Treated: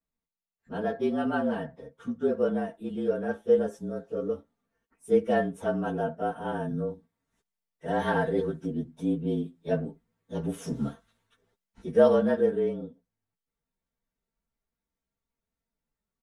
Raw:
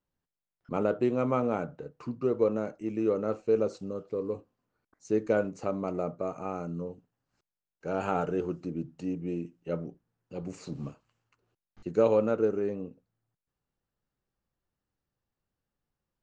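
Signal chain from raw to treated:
partials spread apart or drawn together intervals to 111%
comb filter 4.4 ms, depth 59%
speech leveller 2 s

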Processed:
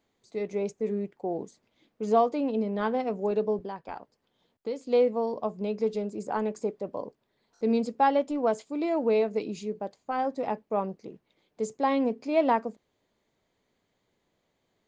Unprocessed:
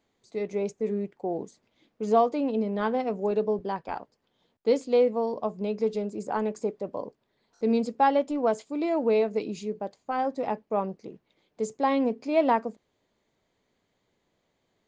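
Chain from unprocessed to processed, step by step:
0:03.63–0:04.87: downward compressor 2 to 1, threshold −36 dBFS, peak gain reduction 10.5 dB
level −1 dB

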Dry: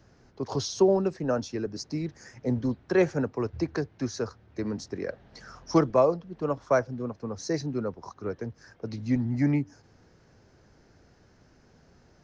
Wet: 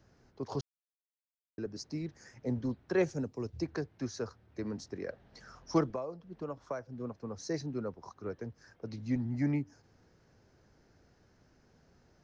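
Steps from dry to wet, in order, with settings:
0:00.61–0:01.58: silence
0:03.04–0:03.62: drawn EQ curve 240 Hz 0 dB, 1,500 Hz −10 dB, 6,200 Hz +6 dB
0:05.91–0:07.01: downward compressor 6 to 1, threshold −29 dBFS, peak gain reduction 12.5 dB
level −6.5 dB

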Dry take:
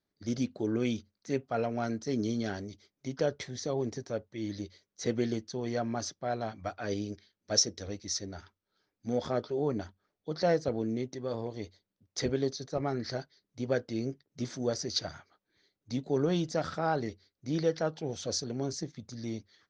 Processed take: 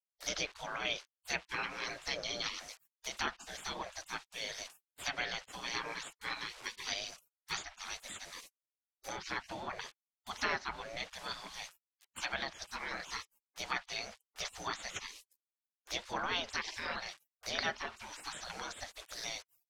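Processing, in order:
bit reduction 10 bits
treble cut that deepens with the level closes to 2,600 Hz, closed at −25 dBFS
gate on every frequency bin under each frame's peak −25 dB weak
level +13 dB

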